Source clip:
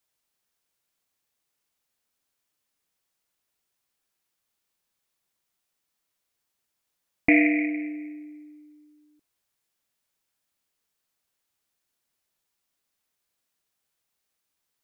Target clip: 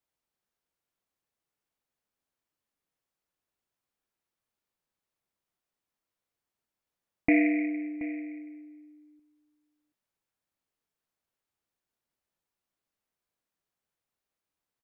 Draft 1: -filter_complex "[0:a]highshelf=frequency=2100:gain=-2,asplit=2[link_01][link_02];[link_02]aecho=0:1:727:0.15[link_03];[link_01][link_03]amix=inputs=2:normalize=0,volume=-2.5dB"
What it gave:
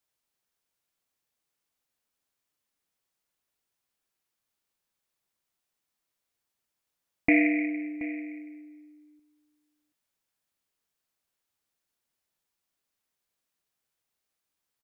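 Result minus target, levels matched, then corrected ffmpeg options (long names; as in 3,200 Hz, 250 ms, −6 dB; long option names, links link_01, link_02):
4,000 Hz band +4.0 dB
-filter_complex "[0:a]highshelf=frequency=2100:gain=-10,asplit=2[link_01][link_02];[link_02]aecho=0:1:727:0.15[link_03];[link_01][link_03]amix=inputs=2:normalize=0,volume=-2.5dB"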